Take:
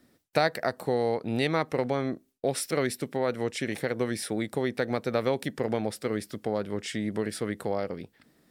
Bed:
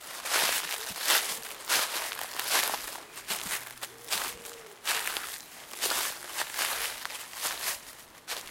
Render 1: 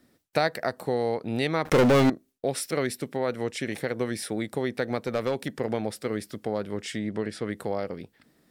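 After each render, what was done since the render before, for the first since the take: 1.65–2.10 s: waveshaping leveller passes 5; 5.06–5.51 s: overload inside the chain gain 20 dB; 6.99–7.49 s: distance through air 60 m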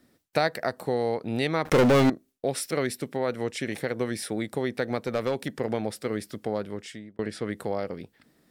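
6.56–7.19 s: fade out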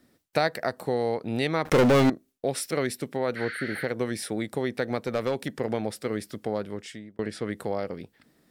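3.38–3.81 s: spectral replace 1.2–8.4 kHz after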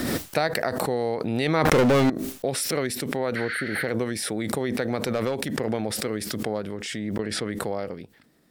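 swell ahead of each attack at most 21 dB/s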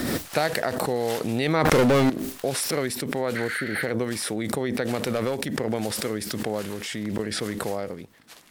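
add bed -12 dB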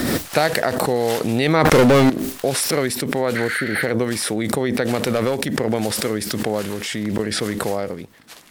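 trim +6 dB; peak limiter -1 dBFS, peak gain reduction 3 dB

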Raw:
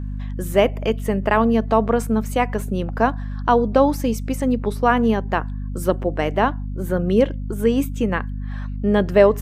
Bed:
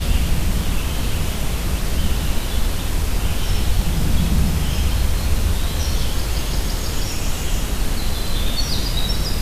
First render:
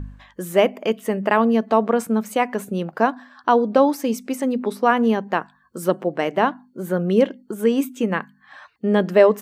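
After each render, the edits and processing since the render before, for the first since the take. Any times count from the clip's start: de-hum 50 Hz, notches 5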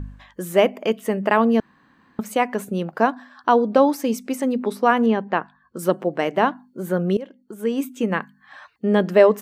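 1.60–2.19 s: room tone; 5.06–5.79 s: low-pass 3.7 kHz; 7.17–8.13 s: fade in, from -21.5 dB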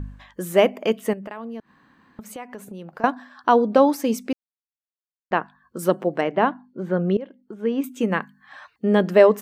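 1.13–3.04 s: compression 3:1, threshold -37 dBFS; 4.33–5.31 s: mute; 6.21–7.84 s: distance through air 210 m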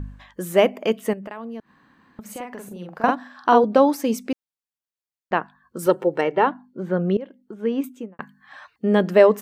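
2.21–3.64 s: doubling 45 ms -2.5 dB; 5.86–6.47 s: comb 2.2 ms; 7.76–8.19 s: studio fade out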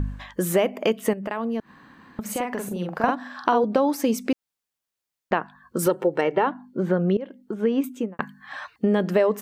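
in parallel at +2 dB: peak limiter -10 dBFS, peak gain reduction 8 dB; on the sum: compression 3:1, threshold -20 dBFS, peak gain reduction 12 dB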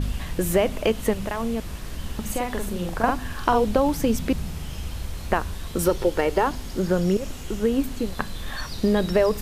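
add bed -13 dB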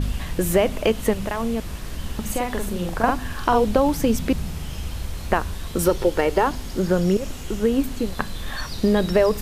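trim +2 dB; peak limiter -3 dBFS, peak gain reduction 2 dB

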